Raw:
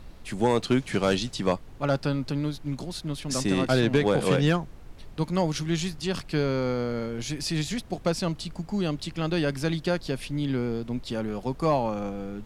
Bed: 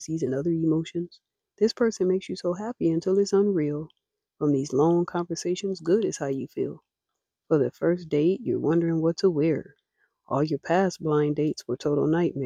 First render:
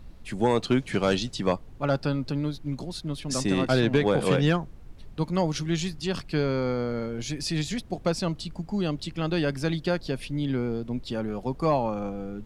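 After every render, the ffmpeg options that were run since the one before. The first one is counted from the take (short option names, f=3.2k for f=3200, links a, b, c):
-af "afftdn=nr=6:nf=-45"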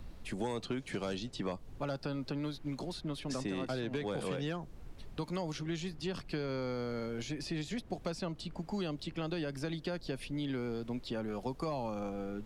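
-filter_complex "[0:a]alimiter=limit=-16.5dB:level=0:latency=1,acrossover=split=270|910|3400[a][b][c][d];[a]acompressor=threshold=-43dB:ratio=4[e];[b]acompressor=threshold=-39dB:ratio=4[f];[c]acompressor=threshold=-48dB:ratio=4[g];[d]acompressor=threshold=-52dB:ratio=4[h];[e][f][g][h]amix=inputs=4:normalize=0"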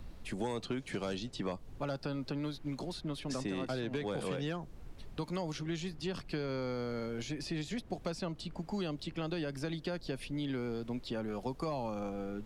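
-af anull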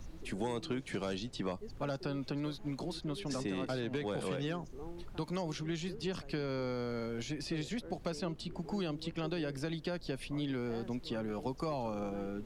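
-filter_complex "[1:a]volume=-26.5dB[a];[0:a][a]amix=inputs=2:normalize=0"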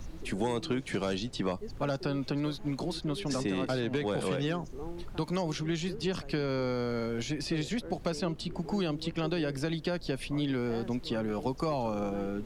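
-af "volume=5.5dB"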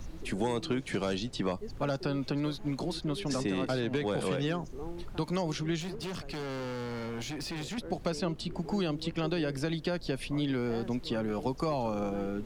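-filter_complex "[0:a]asettb=1/sr,asplit=3[a][b][c];[a]atrim=end=5.804[d];[b]atrim=start=5.8:end=7.78,asetpts=PTS-STARTPTS,afade=t=in:d=0.004:c=qsin,afade=t=out:st=1.976:d=0.004:c=qsin,asoftclip=type=hard:threshold=-34.5dB[e];[c]atrim=start=7.776[f];[d][e]acrossfade=d=0.004:c1=hsin:c2=qsin[g];[g][f]acrossfade=d=0.004:c1=qsin:c2=hsin"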